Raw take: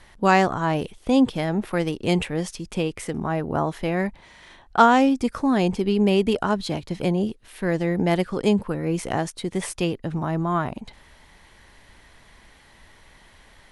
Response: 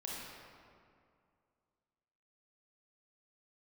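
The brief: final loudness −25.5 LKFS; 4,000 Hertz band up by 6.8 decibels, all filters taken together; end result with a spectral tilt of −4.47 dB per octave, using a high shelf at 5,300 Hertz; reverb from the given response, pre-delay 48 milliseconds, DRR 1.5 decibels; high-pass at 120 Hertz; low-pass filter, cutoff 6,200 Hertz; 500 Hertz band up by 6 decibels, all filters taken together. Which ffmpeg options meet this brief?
-filter_complex "[0:a]highpass=120,lowpass=6200,equalizer=frequency=500:width_type=o:gain=7.5,equalizer=frequency=4000:width_type=o:gain=6.5,highshelf=frequency=5300:gain=8,asplit=2[link_01][link_02];[1:a]atrim=start_sample=2205,adelay=48[link_03];[link_02][link_03]afir=irnorm=-1:irlink=0,volume=-2dB[link_04];[link_01][link_04]amix=inputs=2:normalize=0,volume=-8dB"

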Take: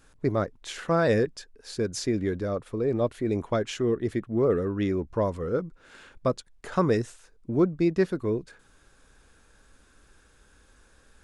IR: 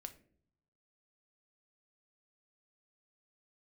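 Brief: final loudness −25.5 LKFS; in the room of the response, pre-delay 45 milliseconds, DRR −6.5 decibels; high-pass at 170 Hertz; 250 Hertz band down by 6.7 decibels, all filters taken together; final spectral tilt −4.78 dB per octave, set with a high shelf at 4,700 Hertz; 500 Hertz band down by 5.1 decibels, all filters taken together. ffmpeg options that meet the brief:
-filter_complex "[0:a]highpass=170,equalizer=frequency=250:width_type=o:gain=-7,equalizer=frequency=500:width_type=o:gain=-4,highshelf=frequency=4700:gain=4,asplit=2[link_01][link_02];[1:a]atrim=start_sample=2205,adelay=45[link_03];[link_02][link_03]afir=irnorm=-1:irlink=0,volume=11.5dB[link_04];[link_01][link_04]amix=inputs=2:normalize=0,volume=-0.5dB"

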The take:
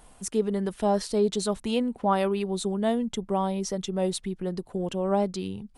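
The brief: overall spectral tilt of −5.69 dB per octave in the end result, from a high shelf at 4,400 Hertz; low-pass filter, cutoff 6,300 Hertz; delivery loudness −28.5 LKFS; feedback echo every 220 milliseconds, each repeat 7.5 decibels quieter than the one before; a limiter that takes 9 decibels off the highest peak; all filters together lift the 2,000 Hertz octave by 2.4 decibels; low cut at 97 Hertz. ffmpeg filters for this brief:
ffmpeg -i in.wav -af "highpass=97,lowpass=6300,equalizer=frequency=2000:width_type=o:gain=4.5,highshelf=frequency=4400:gain=-6,alimiter=limit=-20.5dB:level=0:latency=1,aecho=1:1:220|440|660|880|1100:0.422|0.177|0.0744|0.0312|0.0131,volume=1.5dB" out.wav

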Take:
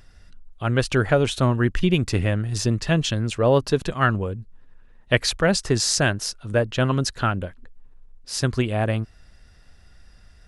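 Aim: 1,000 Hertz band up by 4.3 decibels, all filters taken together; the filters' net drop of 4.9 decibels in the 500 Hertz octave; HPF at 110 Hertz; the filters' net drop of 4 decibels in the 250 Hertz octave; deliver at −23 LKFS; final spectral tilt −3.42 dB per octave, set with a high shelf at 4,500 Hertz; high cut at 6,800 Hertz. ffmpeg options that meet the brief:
ffmpeg -i in.wav -af "highpass=110,lowpass=6800,equalizer=frequency=250:width_type=o:gain=-3.5,equalizer=frequency=500:width_type=o:gain=-7.5,equalizer=frequency=1000:width_type=o:gain=7.5,highshelf=frequency=4500:gain=8.5,volume=-0.5dB" out.wav

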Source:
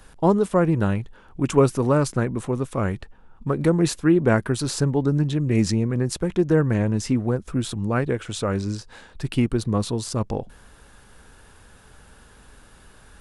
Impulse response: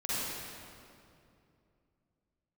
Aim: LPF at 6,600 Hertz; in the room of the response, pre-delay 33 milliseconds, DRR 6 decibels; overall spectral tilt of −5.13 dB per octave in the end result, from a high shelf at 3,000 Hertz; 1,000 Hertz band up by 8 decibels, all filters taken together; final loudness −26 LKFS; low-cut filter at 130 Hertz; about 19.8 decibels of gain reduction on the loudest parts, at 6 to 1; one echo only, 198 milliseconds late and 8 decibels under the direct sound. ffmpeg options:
-filter_complex "[0:a]highpass=130,lowpass=6600,equalizer=frequency=1000:width_type=o:gain=9,highshelf=frequency=3000:gain=6.5,acompressor=threshold=-31dB:ratio=6,aecho=1:1:198:0.398,asplit=2[link_01][link_02];[1:a]atrim=start_sample=2205,adelay=33[link_03];[link_02][link_03]afir=irnorm=-1:irlink=0,volume=-13dB[link_04];[link_01][link_04]amix=inputs=2:normalize=0,volume=7.5dB"

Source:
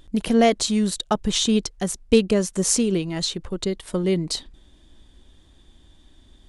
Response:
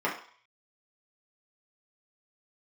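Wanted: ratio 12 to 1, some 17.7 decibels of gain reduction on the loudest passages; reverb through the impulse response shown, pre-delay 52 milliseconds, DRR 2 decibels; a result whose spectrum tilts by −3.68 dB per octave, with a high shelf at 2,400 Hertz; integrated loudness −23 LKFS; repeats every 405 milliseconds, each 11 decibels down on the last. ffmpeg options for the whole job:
-filter_complex "[0:a]highshelf=frequency=2400:gain=5,acompressor=threshold=-29dB:ratio=12,aecho=1:1:405|810|1215:0.282|0.0789|0.0221,asplit=2[link_01][link_02];[1:a]atrim=start_sample=2205,adelay=52[link_03];[link_02][link_03]afir=irnorm=-1:irlink=0,volume=-13.5dB[link_04];[link_01][link_04]amix=inputs=2:normalize=0,volume=9dB"

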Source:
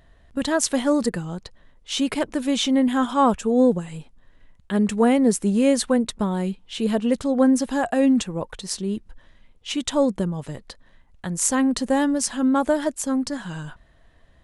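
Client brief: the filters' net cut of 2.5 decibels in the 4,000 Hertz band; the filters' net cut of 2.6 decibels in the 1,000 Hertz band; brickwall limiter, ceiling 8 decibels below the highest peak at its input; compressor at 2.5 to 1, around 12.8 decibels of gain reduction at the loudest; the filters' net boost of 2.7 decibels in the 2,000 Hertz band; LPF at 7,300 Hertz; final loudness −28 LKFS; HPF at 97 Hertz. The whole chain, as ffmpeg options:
ffmpeg -i in.wav -af "highpass=97,lowpass=7300,equalizer=frequency=1000:width_type=o:gain=-4.5,equalizer=frequency=2000:width_type=o:gain=6,equalizer=frequency=4000:width_type=o:gain=-5,acompressor=threshold=-34dB:ratio=2.5,volume=6.5dB,alimiter=limit=-18.5dB:level=0:latency=1" out.wav

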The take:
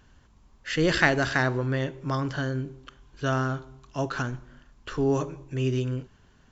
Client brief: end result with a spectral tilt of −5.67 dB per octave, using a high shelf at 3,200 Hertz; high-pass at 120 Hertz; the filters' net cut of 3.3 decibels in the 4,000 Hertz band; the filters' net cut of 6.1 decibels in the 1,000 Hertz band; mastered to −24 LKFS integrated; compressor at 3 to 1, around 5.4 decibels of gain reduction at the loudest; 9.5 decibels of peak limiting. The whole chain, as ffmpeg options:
ffmpeg -i in.wav -af "highpass=120,equalizer=frequency=1000:width_type=o:gain=-9,highshelf=frequency=3200:gain=4,equalizer=frequency=4000:width_type=o:gain=-7,acompressor=threshold=-27dB:ratio=3,volume=10.5dB,alimiter=limit=-12.5dB:level=0:latency=1" out.wav

